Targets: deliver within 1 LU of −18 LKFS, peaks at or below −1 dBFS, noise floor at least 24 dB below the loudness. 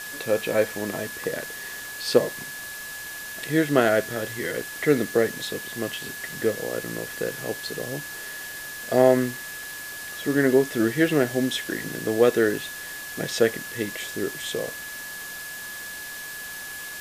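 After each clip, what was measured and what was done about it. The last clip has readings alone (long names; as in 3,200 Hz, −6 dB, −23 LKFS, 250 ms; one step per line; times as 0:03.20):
interfering tone 1,700 Hz; level of the tone −36 dBFS; background noise floor −37 dBFS; target noise floor −50 dBFS; integrated loudness −26.0 LKFS; sample peak −3.5 dBFS; target loudness −18.0 LKFS
→ notch filter 1,700 Hz, Q 30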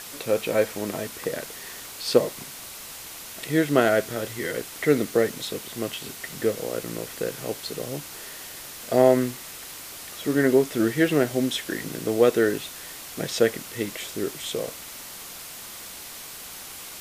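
interfering tone none found; background noise floor −40 dBFS; target noise floor −50 dBFS
→ broadband denoise 10 dB, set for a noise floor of −40 dBFS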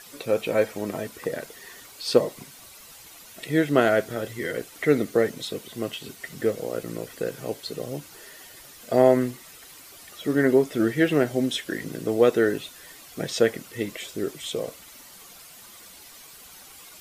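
background noise floor −47 dBFS; target noise floor −50 dBFS
→ broadband denoise 6 dB, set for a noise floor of −47 dBFS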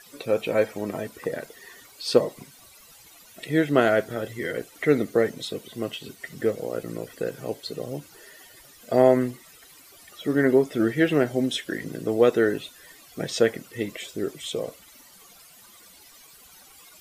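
background noise floor −51 dBFS; integrated loudness −25.5 LKFS; sample peak −3.5 dBFS; target loudness −18.0 LKFS
→ level +7.5 dB
brickwall limiter −1 dBFS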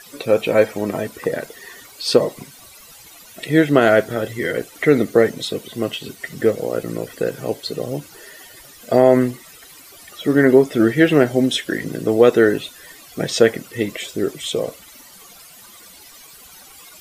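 integrated loudness −18.5 LKFS; sample peak −1.0 dBFS; background noise floor −44 dBFS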